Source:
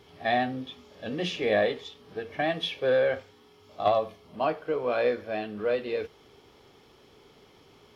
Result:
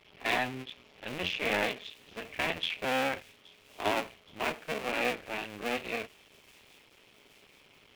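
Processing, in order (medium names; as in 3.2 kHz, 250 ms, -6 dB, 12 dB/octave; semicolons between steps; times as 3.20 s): cycle switcher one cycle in 2, muted; peaking EQ 2.5 kHz +12.5 dB 0.91 oct; on a send: feedback echo behind a high-pass 822 ms, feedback 67%, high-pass 5.2 kHz, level -15 dB; on the sum: trim -5 dB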